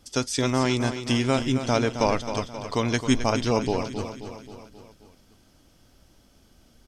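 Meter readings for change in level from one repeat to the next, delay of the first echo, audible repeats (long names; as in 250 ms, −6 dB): −5.0 dB, 266 ms, 5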